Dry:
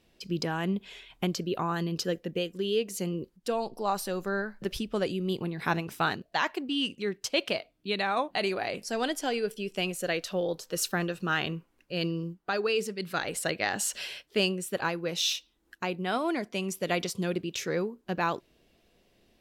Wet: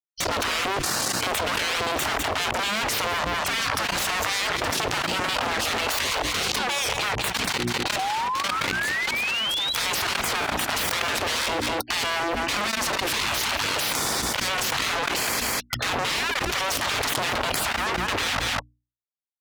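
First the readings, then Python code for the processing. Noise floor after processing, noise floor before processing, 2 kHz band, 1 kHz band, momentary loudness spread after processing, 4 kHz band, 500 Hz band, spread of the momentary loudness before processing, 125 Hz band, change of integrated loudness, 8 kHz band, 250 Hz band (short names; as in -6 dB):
-53 dBFS, -69 dBFS, +9.5 dB, +8.0 dB, 2 LU, +10.0 dB, 0.0 dB, 5 LU, 0.0 dB, +7.0 dB, +10.0 dB, -2.0 dB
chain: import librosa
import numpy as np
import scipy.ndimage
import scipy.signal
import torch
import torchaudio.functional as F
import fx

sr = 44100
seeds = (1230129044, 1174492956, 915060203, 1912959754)

y = fx.fuzz(x, sr, gain_db=48.0, gate_db=-49.0)
y = fx.spec_gate(y, sr, threshold_db=-15, keep='weak')
y = scipy.signal.sosfilt(scipy.signal.butter(2, 46.0, 'highpass', fs=sr, output='sos'), y)
y = fx.high_shelf(y, sr, hz=7900.0, db=-11.5)
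y = fx.level_steps(y, sr, step_db=22)
y = fx.spec_paint(y, sr, seeds[0], shape='rise', start_s=7.98, length_s=1.75, low_hz=740.0, high_hz=4000.0, level_db=-38.0)
y = fx.hum_notches(y, sr, base_hz=60, count=6)
y = y + 10.0 ** (-18.0 / 20.0) * np.pad(y, (int(201 * sr / 1000.0), 0))[:len(y)]
y = fx.env_flatten(y, sr, amount_pct=100)
y = y * 10.0 ** (-4.0 / 20.0)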